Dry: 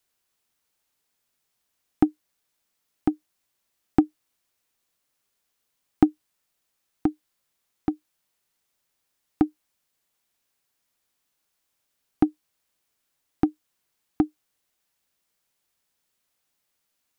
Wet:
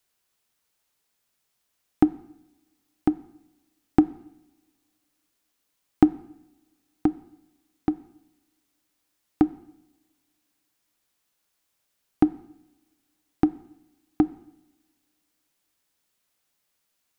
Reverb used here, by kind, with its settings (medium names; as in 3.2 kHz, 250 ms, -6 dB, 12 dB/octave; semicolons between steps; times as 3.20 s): two-slope reverb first 0.83 s, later 2.8 s, from -27 dB, DRR 15.5 dB; trim +1 dB